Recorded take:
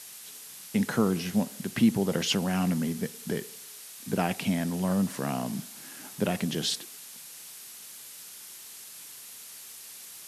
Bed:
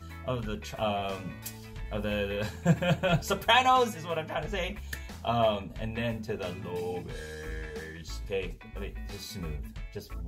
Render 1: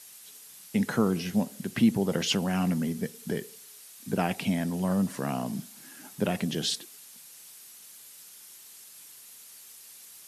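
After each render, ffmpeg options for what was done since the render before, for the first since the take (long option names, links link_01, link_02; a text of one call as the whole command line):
ffmpeg -i in.wav -af "afftdn=noise_reduction=6:noise_floor=-46" out.wav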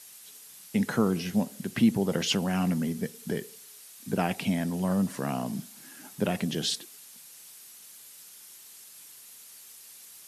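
ffmpeg -i in.wav -af anull out.wav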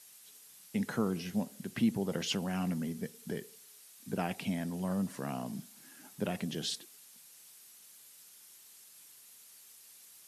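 ffmpeg -i in.wav -af "volume=-7dB" out.wav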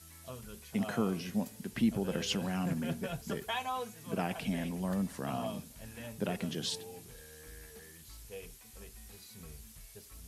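ffmpeg -i in.wav -i bed.wav -filter_complex "[1:a]volume=-14dB[link_01];[0:a][link_01]amix=inputs=2:normalize=0" out.wav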